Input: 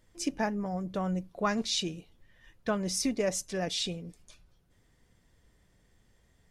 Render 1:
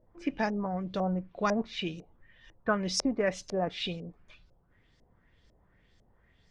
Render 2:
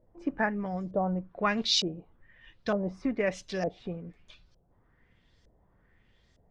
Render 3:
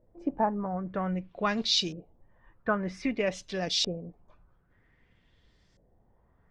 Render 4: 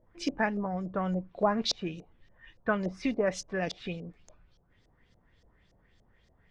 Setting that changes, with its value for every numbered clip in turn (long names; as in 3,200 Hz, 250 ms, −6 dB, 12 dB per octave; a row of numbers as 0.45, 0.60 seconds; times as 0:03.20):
auto-filter low-pass, speed: 2, 1.1, 0.52, 3.5 Hertz